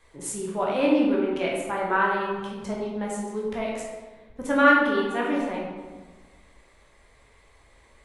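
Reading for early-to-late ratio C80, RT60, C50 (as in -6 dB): 3.0 dB, 1.3 s, 0.5 dB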